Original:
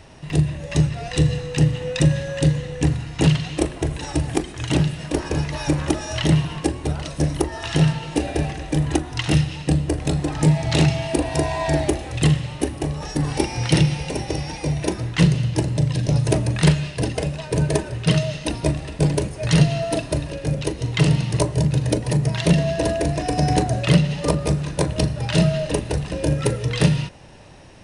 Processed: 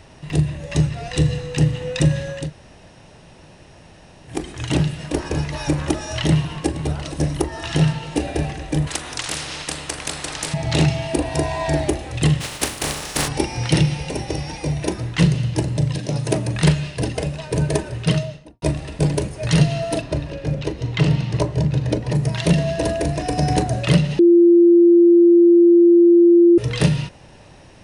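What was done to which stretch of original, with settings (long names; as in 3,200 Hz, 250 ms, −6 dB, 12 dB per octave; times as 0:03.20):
0:02.41–0:04.35: fill with room tone, crossfade 0.24 s
0:06.27–0:06.73: delay throw 470 ms, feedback 50%, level −13 dB
0:08.87–0:10.54: every bin compressed towards the loudest bin 4 to 1
0:12.40–0:13.27: compressing power law on the bin magnitudes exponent 0.35
0:15.97–0:16.53: high-pass filter 210 Hz → 96 Hz
0:18.03–0:18.62: fade out and dull
0:20.01–0:22.15: high-frequency loss of the air 89 metres
0:24.19–0:26.58: beep over 344 Hz −7.5 dBFS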